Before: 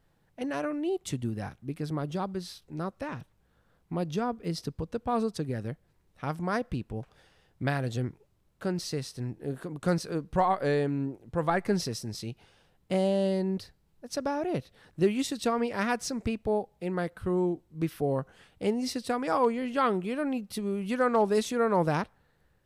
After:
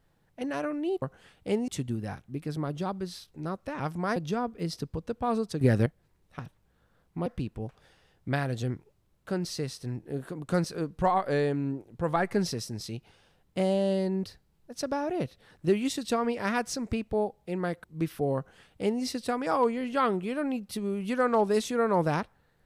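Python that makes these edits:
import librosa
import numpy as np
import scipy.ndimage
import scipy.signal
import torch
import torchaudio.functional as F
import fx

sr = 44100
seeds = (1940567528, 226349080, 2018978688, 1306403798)

y = fx.edit(x, sr, fx.swap(start_s=3.14, length_s=0.87, other_s=6.24, other_length_s=0.36),
    fx.clip_gain(start_s=5.46, length_s=0.25, db=11.0),
    fx.cut(start_s=17.18, length_s=0.47),
    fx.duplicate(start_s=18.17, length_s=0.66, to_s=1.02), tone=tone)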